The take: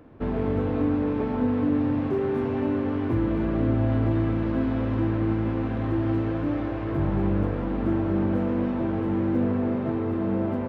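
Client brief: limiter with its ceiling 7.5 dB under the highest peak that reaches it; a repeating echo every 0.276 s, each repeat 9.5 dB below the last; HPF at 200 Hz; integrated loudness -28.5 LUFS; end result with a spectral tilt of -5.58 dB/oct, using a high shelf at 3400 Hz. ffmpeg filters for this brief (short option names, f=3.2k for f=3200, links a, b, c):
-af "highpass=200,highshelf=f=3.4k:g=4,alimiter=limit=-22dB:level=0:latency=1,aecho=1:1:276|552|828|1104:0.335|0.111|0.0365|0.012"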